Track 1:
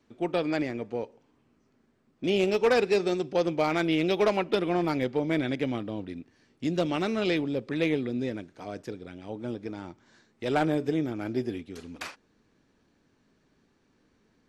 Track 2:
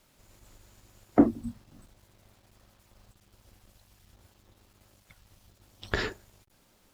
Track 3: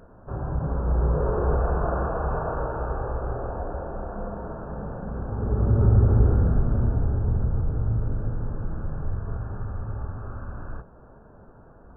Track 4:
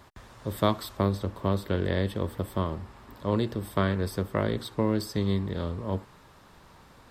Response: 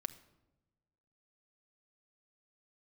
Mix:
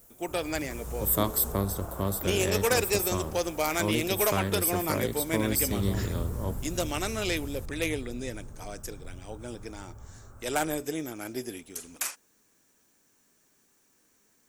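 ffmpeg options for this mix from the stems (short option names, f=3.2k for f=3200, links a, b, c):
-filter_complex "[0:a]lowshelf=f=390:g=-10.5,volume=0dB[a];[1:a]alimiter=limit=-16dB:level=0:latency=1,volume=-10.5dB[b];[2:a]volume=-15dB[c];[3:a]adelay=550,volume=-3.5dB[d];[a][b][c][d]amix=inputs=4:normalize=0,highshelf=f=7.3k:g=9.5,aexciter=amount=4.3:drive=7:freq=6.1k"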